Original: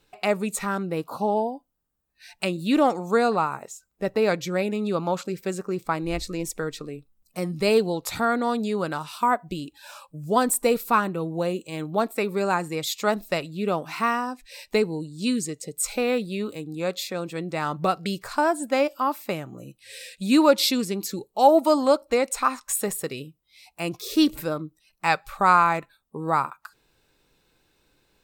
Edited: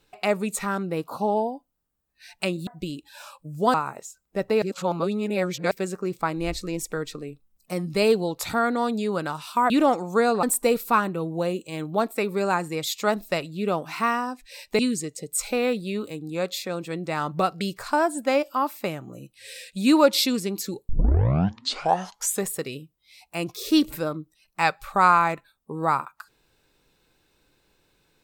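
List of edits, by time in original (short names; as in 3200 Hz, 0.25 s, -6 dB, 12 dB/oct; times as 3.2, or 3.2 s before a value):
2.67–3.4 swap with 9.36–10.43
4.28–5.37 reverse
14.79–15.24 cut
21.34 tape start 1.58 s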